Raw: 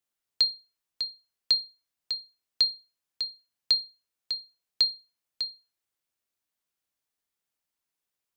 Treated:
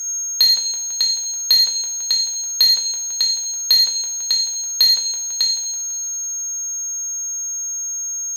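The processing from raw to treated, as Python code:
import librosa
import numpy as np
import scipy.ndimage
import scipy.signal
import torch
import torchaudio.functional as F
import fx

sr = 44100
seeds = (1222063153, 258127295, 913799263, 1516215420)

p1 = scipy.signal.sosfilt(scipy.signal.butter(2, 180.0, 'highpass', fs=sr, output='sos'), x)
p2 = fx.level_steps(p1, sr, step_db=19)
p3 = p1 + F.gain(torch.from_numpy(p2), -3.0).numpy()
p4 = p3 + 10.0 ** (-39.0 / 20.0) * np.sin(2.0 * np.pi * 6500.0 * np.arange(len(p3)) / sr)
p5 = p4 + fx.echo_wet_lowpass(p4, sr, ms=166, feedback_pct=65, hz=1700.0, wet_db=-8, dry=0)
p6 = fx.rev_double_slope(p5, sr, seeds[0], early_s=0.62, late_s=1.6, knee_db=-18, drr_db=0.5)
p7 = fx.leveller(p6, sr, passes=2)
y = F.gain(torch.from_numpy(p7), 5.0).numpy()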